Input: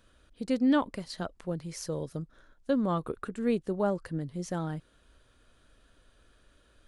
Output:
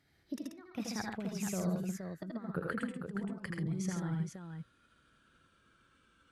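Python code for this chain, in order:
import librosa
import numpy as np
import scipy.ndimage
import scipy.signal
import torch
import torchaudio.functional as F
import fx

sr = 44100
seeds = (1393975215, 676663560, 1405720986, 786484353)

p1 = fx.speed_glide(x, sr, from_pct=128, to_pct=90)
p2 = fx.high_shelf(p1, sr, hz=3400.0, db=-10.5)
p3 = fx.level_steps(p2, sr, step_db=15)
p4 = p2 + F.gain(torch.from_numpy(p3), -3.0).numpy()
p5 = scipy.signal.sosfilt(scipy.signal.butter(2, 120.0, 'highpass', fs=sr, output='sos'), p4)
p6 = fx.peak_eq(p5, sr, hz=610.0, db=-11.5, octaves=1.8)
p7 = fx.gate_flip(p6, sr, shuts_db=-22.0, range_db=-30)
p8 = fx.over_compress(p7, sr, threshold_db=-38.0, ratio=-0.5)
p9 = fx.noise_reduce_blind(p8, sr, reduce_db=7)
y = p9 + fx.echo_multitap(p9, sr, ms=(79, 85, 134, 470), db=(-4.0, -6.5, -5.5, -6.5), dry=0)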